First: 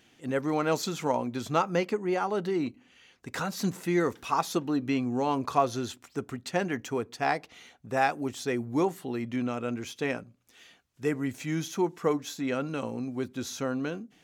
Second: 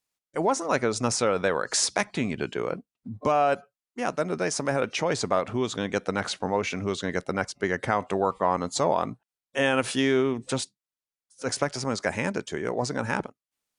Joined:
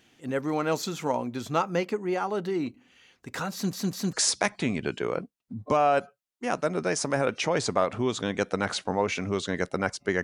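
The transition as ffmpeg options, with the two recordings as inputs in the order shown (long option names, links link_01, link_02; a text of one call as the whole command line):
ffmpeg -i cue0.wav -i cue1.wav -filter_complex "[0:a]apad=whole_dur=10.23,atrim=end=10.23,asplit=3[link_01][link_02][link_03];[link_01]atrim=end=3.732[link_04];[link_02]atrim=start=3.528:end=3.732[link_05];[link_03]atrim=start=3.528:end=3.732[link_06];[1:a]atrim=start=1.678:end=7.78[link_07];[link_04][link_05]acrossfade=duration=0.004:curve1=hsin:curve2=hsin[link_08];[link_08][link_06]acrossfade=duration=0.004:curve1=hsin:curve2=hsin[link_09];[link_09][link_07]acrossfade=duration=0.004:curve1=hsin:curve2=hsin" out.wav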